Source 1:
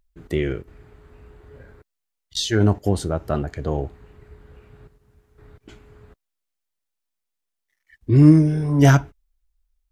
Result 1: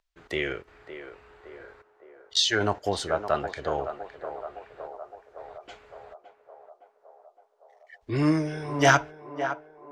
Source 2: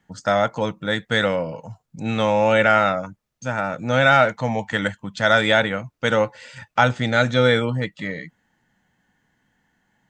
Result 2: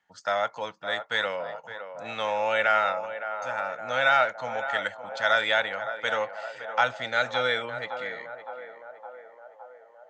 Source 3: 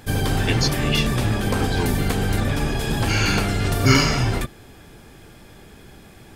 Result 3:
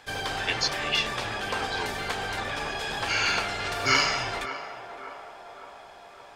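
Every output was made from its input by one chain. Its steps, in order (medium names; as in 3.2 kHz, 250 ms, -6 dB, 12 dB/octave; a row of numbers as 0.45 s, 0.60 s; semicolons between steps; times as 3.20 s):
three-band isolator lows -19 dB, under 530 Hz, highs -17 dB, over 6.9 kHz; on a send: band-passed feedback delay 563 ms, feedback 70%, band-pass 700 Hz, level -8.5 dB; on the sum: normalise loudness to -27 LUFS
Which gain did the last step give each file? +3.5 dB, -5.0 dB, -1.5 dB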